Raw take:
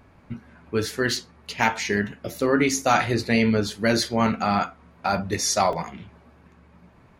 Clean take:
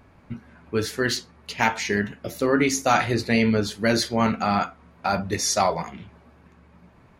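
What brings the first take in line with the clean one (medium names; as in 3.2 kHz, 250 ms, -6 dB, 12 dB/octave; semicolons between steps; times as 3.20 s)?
interpolate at 1.44/5.73 s, 1.7 ms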